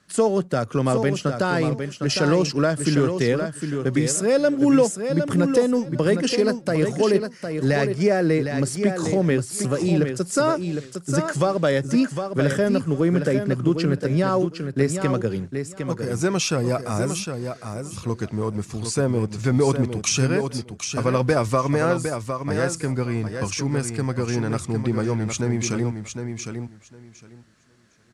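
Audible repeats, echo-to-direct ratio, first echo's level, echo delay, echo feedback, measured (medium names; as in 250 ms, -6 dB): 2, -7.0 dB, -7.0 dB, 758 ms, 17%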